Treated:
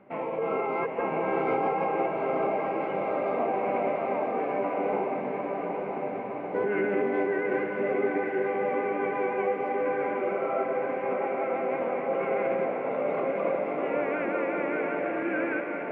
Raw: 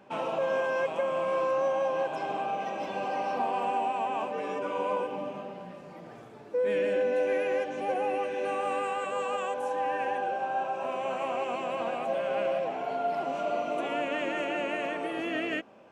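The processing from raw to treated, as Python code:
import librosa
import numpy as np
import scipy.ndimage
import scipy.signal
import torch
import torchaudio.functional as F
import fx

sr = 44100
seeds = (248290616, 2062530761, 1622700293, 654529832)

y = scipy.signal.sosfilt(scipy.signal.butter(4, 3100.0, 'lowpass', fs=sr, output='sos'), x)
y = fx.formant_shift(y, sr, semitones=-3)
y = fx.echo_diffused(y, sr, ms=917, feedback_pct=68, wet_db=-3.5)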